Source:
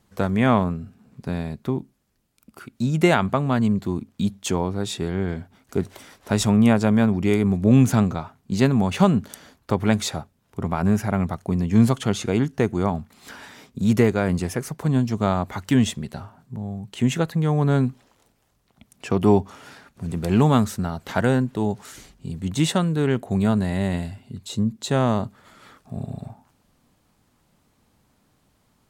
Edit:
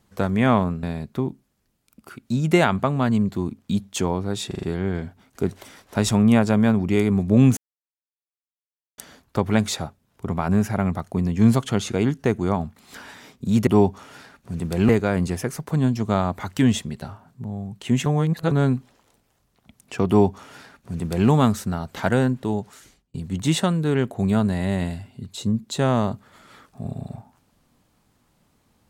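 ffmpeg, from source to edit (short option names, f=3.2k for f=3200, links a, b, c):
-filter_complex "[0:a]asplit=13[a][b][c][d][e][f][g][h][i][j][k][l][m];[a]atrim=end=0.832[n];[b]atrim=start=1.328:end=5.012[o];[c]atrim=start=4.968:end=5.012[p];[d]atrim=start=4.968:end=5.012[q];[e]atrim=start=4.968:end=5.012[r];[f]atrim=start=4.968:end=7.91,asetpts=PTS-STARTPTS,afade=t=out:st=2.938:d=0.004:c=hsin[s];[g]atrim=start=7.91:end=9.32,asetpts=PTS-STARTPTS,volume=0[t];[h]atrim=start=9.32:end=14.012,asetpts=PTS-STARTPTS,afade=t=in:d=0.004:c=hsin[u];[i]atrim=start=19.188:end=20.412[v];[j]atrim=start=14.008:end=17.182[w];[k]atrim=start=17.178:end=17.632,asetpts=PTS-STARTPTS,areverse[x];[l]atrim=start=17.628:end=22.26,asetpts=PTS-STARTPTS,afade=t=out:st=3.922:d=0.71[y];[m]atrim=start=22.26,asetpts=PTS-STARTPTS,afade=t=in:d=0.004:c=hsin[z];[n][o]acrossfade=d=0.004:c1=hsin:c2=hsin[aa];[aa][p]acrossfade=d=0.004:c1=hsin:c2=hsin[ab];[ab][q]acrossfade=d=0.004:c1=hsin:c2=hsin[ac];[ac][r]acrossfade=d=0.004:c1=hsin:c2=hsin[ad];[s][t][u]concat=n=3:v=0:a=1[ae];[ad][ae]acrossfade=d=0.004:c1=hsin:c2=hsin[af];[af][v]acrossfade=d=0.004:c1=hsin:c2=hsin[ag];[ag][w]acrossfade=d=0.004:c1=hsin:c2=hsin[ah];[ah][x]acrossfade=d=0.004:c1=hsin:c2=hsin[ai];[y][z]concat=n=2:v=0:a=1[aj];[ai][aj]acrossfade=d=0.004:c1=hsin:c2=hsin"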